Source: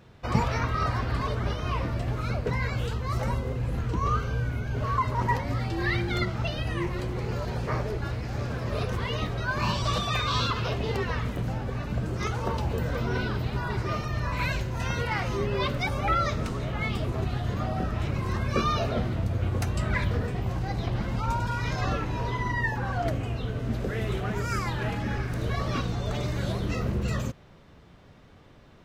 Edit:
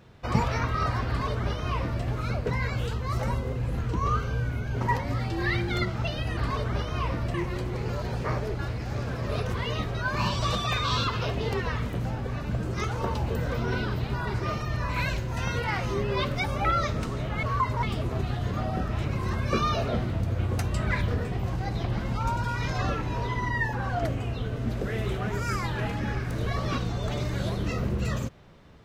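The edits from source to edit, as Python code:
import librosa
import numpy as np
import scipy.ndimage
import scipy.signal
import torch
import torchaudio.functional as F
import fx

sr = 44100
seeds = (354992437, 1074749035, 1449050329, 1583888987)

y = fx.edit(x, sr, fx.duplicate(start_s=1.08, length_s=0.97, to_s=6.77),
    fx.move(start_s=4.81, length_s=0.4, to_s=16.86), tone=tone)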